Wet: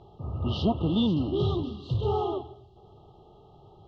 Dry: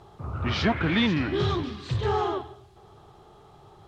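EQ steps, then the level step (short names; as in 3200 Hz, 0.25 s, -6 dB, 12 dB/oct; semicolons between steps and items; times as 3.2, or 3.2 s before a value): brick-wall FIR band-stop 1300–2700 Hz; air absorption 210 m; bell 1100 Hz -11 dB 0.39 oct; 0.0 dB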